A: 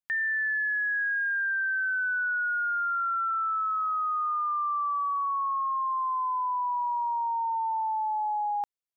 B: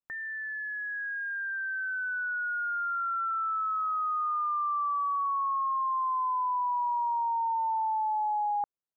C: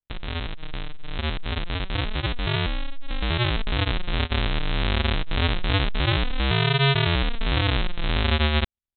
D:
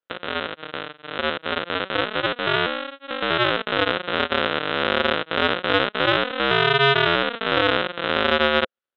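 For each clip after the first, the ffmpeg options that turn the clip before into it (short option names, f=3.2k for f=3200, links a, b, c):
-af "lowpass=f=1.4k:w=0.5412,lowpass=f=1.4k:w=1.3066"
-af "aresample=8000,acrusher=samples=41:mix=1:aa=0.000001:lfo=1:lforange=24.6:lforate=0.26,aresample=44100,crystalizer=i=8.5:c=0,volume=6.5dB"
-af "acontrast=82,highpass=310,equalizer=f=520:t=q:w=4:g=8,equalizer=f=860:t=q:w=4:g=-3,equalizer=f=1.4k:t=q:w=4:g=8,equalizer=f=2.3k:t=q:w=4:g=-4,lowpass=f=3.6k:w=0.5412,lowpass=f=3.6k:w=1.3066"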